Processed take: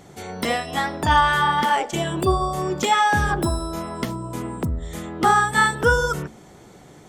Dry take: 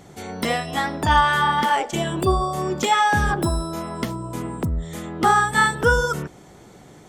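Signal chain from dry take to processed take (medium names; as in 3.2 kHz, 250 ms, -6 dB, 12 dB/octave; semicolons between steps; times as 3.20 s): de-hum 55.15 Hz, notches 5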